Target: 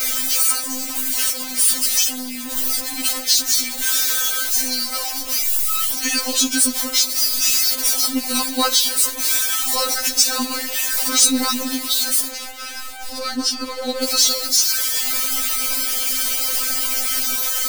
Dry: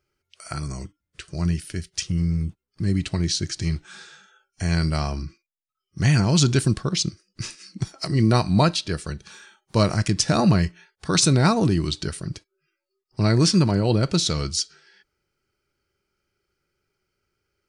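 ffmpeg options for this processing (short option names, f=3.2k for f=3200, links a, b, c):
-filter_complex "[0:a]aeval=exprs='val(0)+0.5*0.0708*sgn(val(0))':c=same,crystalizer=i=4.5:c=0,asplit=2[a][b];[b]alimiter=limit=-1.5dB:level=0:latency=1:release=496,volume=-2dB[c];[a][c]amix=inputs=2:normalize=0,asettb=1/sr,asplit=3[d][e][f];[d]atrim=end=12.314[g];[e]atrim=start=12.31:end=14.03,asetpts=PTS-STARTPTS,afade=t=in:d=0.004:c=qsin,afade=t=out:st=1.716:d=0.004:c=qsin,aemphasis=mode=reproduction:type=75kf[h];[f]atrim=start=14.026[i];[g][h]acrossfade=d=0.004:c1=hsin:c2=qsin[j];[j][i]acrossfade=d=0.004:c1=qsin:c2=hsin,acrossover=split=110|790[k][l][m];[m]asoftclip=type=hard:threshold=-2.5dB[n];[k][l][n]amix=inputs=3:normalize=0,afftfilt=real='re*3.46*eq(mod(b,12),0)':imag='im*3.46*eq(mod(b,12),0)':win_size=2048:overlap=0.75,volume=-4.5dB"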